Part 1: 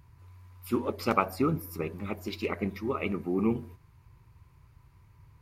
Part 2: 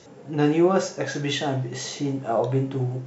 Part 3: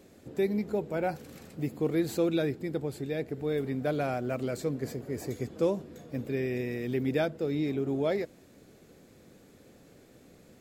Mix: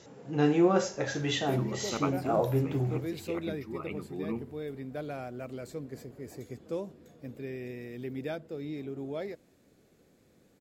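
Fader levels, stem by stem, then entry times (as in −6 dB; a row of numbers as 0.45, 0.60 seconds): −8.5, −4.5, −8.0 decibels; 0.85, 0.00, 1.10 seconds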